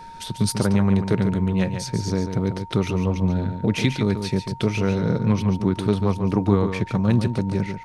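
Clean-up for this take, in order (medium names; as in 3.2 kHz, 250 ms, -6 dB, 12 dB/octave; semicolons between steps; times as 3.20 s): band-stop 920 Hz, Q 30; expander -25 dBFS, range -21 dB; inverse comb 142 ms -8 dB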